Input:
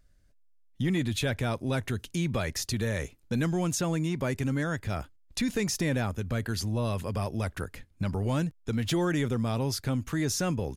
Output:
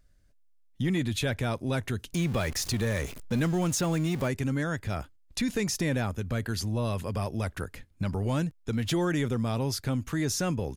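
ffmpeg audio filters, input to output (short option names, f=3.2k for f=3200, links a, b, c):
-filter_complex "[0:a]asettb=1/sr,asplit=3[a][b][c];[a]atrim=end=2.134[d];[b]atrim=start=2.13:end=4.28,asetpts=PTS-STARTPTS,afade=t=in:d=0.004:c=qsin,afade=t=out:st=2.146:d=0.004:c=qsin,aeval=exprs='val(0)+0.5*0.015*sgn(val(0))':c=same[e];[c]atrim=start=4.276[f];[d][e]acrossfade=d=0.004:c1=hsin:c2=qsin[g];[g][f]acrossfade=d=0.004:c1=qsin:c2=hsin"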